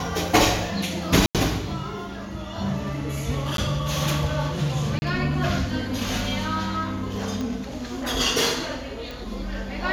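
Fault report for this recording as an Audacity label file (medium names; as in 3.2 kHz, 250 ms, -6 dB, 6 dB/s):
1.260000	1.350000	dropout 87 ms
3.570000	3.580000	dropout 12 ms
4.990000	5.020000	dropout 30 ms
7.410000	7.410000	pop -18 dBFS
9.110000	9.110000	pop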